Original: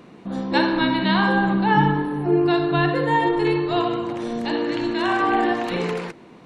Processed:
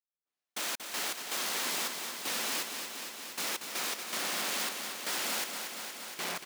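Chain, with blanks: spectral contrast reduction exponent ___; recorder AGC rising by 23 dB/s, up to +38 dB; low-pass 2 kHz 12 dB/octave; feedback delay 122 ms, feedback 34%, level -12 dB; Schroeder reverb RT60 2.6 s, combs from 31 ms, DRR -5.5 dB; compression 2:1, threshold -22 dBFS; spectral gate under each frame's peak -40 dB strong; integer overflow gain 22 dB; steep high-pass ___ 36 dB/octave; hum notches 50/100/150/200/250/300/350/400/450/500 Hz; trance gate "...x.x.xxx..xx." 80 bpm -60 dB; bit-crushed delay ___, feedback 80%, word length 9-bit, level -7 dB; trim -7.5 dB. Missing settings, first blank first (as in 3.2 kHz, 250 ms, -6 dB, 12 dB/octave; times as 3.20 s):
0.13, 190 Hz, 234 ms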